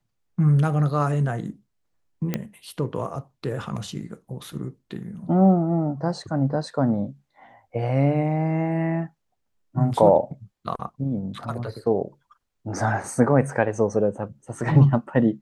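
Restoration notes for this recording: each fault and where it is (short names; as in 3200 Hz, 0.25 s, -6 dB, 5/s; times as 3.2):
2.34 pop -11 dBFS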